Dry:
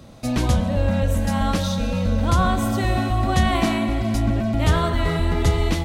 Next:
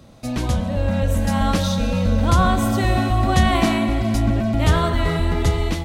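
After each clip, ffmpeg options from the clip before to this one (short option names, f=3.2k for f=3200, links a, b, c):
-af "dynaudnorm=f=410:g=5:m=7.5dB,volume=-2.5dB"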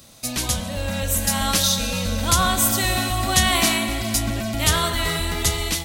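-af "crystalizer=i=10:c=0,volume=-7dB"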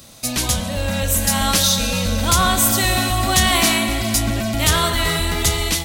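-af "asoftclip=type=tanh:threshold=-12dB,volume=4.5dB"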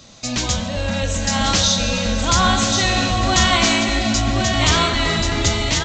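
-af "flanger=delay=3.1:depth=7.6:regen=79:speed=1:shape=triangular,aecho=1:1:1083:0.531,aresample=16000,aresample=44100,volume=4.5dB"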